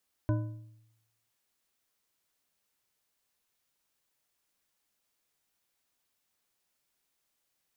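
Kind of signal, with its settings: metal hit bar, length 1.02 s, lowest mode 112 Hz, modes 5, decay 0.87 s, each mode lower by 5.5 dB, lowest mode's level -23.5 dB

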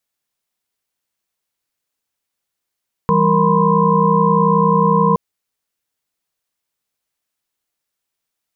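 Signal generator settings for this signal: chord E3/G3/A#4/B5/C6 sine, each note -17 dBFS 2.07 s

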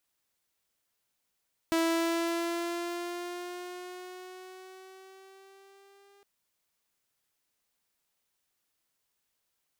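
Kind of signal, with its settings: gliding synth tone saw, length 4.51 s, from 328 Hz, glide +3.5 st, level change -34.5 dB, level -21.5 dB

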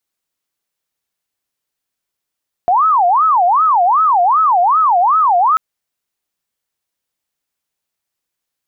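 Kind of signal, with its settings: siren wail 696–1300 Hz 2.6/s sine -8.5 dBFS 2.89 s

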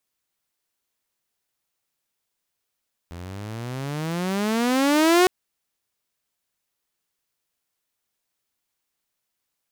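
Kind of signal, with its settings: gliding synth tone saw, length 2.16 s, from 83 Hz, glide +26 st, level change +22 dB, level -10.5 dB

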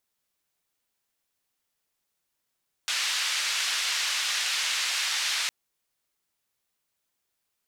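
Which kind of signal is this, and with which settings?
noise band 1700–4800 Hz, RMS -28 dBFS 2.61 s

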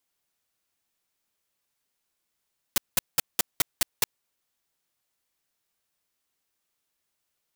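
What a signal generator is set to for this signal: noise bursts white, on 0.02 s, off 0.19 s, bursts 7, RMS -20.5 dBFS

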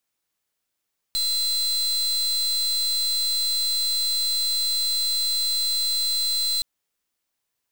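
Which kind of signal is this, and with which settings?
pulse 4070 Hz, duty 37% -23.5 dBFS 5.47 s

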